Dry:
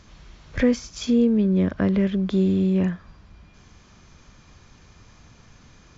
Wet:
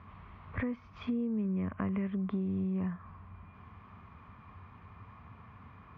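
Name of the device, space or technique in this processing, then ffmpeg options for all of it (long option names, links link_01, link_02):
bass amplifier: -filter_complex "[0:a]asettb=1/sr,asplit=3[link_01][link_02][link_03];[link_01]atrim=end=1.404[link_04];[link_02]atrim=start=1.4:end=2.07,asetpts=PTS-STARTPTS,afade=type=in:duration=0.004:curve=qsin,afade=type=out:start_time=0.666:duration=0.004:curve=qsin,highshelf=frequency=3500:width_type=q:width=3:gain=-8[link_05];[link_03]atrim=start=2.066[link_06];[link_04][link_05]acrossfade=duration=0.004:curve1=hsin:curve2=qsin[link_07];[link_07][link_06]acrossfade=duration=0.004:curve1=qsin:curve2=hsin,acompressor=threshold=-30dB:ratio=5,highpass=82,equalizer=frequency=94:width_type=q:width=4:gain=7,equalizer=frequency=140:width_type=q:width=4:gain=-5,equalizer=frequency=330:width_type=q:width=4:gain=-10,equalizer=frequency=540:width_type=q:width=4:gain=-8,equalizer=frequency=1100:width_type=q:width=4:gain=9,equalizer=frequency=1600:width_type=q:width=4:gain=-6,lowpass=frequency=2200:width=0.5412,lowpass=frequency=2200:width=1.3066"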